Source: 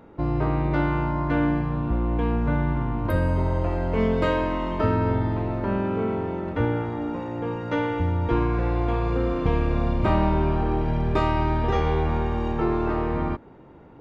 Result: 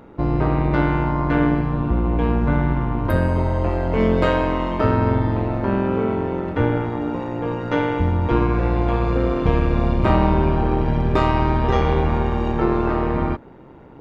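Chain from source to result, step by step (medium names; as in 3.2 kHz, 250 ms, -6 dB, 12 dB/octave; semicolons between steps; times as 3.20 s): AM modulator 130 Hz, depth 40%; trim +7 dB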